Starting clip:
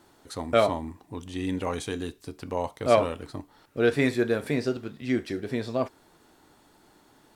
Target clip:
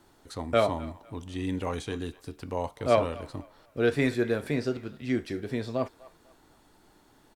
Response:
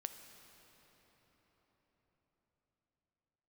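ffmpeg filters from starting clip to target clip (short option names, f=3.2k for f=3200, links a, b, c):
-filter_complex "[0:a]lowshelf=f=60:g=11.5,acrossover=split=520|6100[a][b][c];[b]asplit=2[d][e];[e]adelay=249,lowpass=f=4k:p=1,volume=-18dB,asplit=2[f][g];[g]adelay=249,lowpass=f=4k:p=1,volume=0.31,asplit=2[h][i];[i]adelay=249,lowpass=f=4k:p=1,volume=0.31[j];[d][f][h][j]amix=inputs=4:normalize=0[k];[c]alimiter=level_in=14dB:limit=-24dB:level=0:latency=1:release=337,volume=-14dB[l];[a][k][l]amix=inputs=3:normalize=0,volume=-2.5dB"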